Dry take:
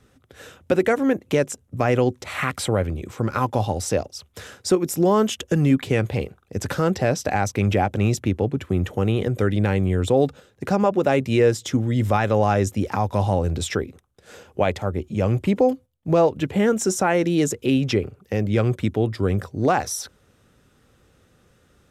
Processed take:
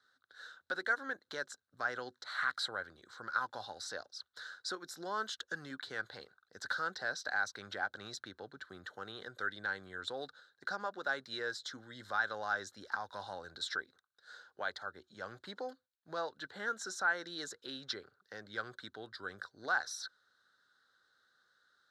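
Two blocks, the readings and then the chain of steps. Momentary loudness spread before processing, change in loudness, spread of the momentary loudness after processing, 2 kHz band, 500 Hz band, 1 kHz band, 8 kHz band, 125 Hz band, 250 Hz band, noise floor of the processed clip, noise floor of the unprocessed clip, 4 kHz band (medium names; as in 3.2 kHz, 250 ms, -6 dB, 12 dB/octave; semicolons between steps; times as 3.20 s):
8 LU, -17.5 dB, 14 LU, -5.0 dB, -24.5 dB, -14.5 dB, -17.5 dB, -37.0 dB, -30.5 dB, -84 dBFS, -60 dBFS, -8.5 dB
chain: two resonant band-passes 2.5 kHz, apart 1.4 oct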